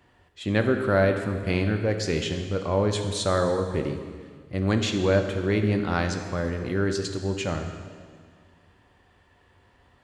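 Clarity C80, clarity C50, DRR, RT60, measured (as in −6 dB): 8.0 dB, 7.0 dB, 5.0 dB, 1.8 s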